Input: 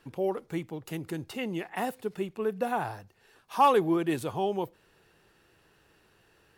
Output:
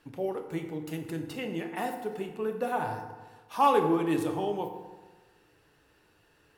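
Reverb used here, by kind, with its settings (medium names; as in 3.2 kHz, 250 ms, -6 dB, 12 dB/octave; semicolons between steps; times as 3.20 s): FDN reverb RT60 1.3 s, low-frequency decay 1×, high-frequency decay 0.55×, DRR 3.5 dB; trim -2.5 dB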